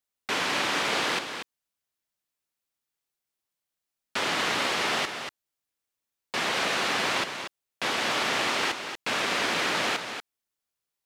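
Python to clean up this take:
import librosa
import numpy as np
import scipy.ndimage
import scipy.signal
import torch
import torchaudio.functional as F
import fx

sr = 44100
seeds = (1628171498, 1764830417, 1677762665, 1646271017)

y = fx.fix_echo_inverse(x, sr, delay_ms=237, level_db=-8.0)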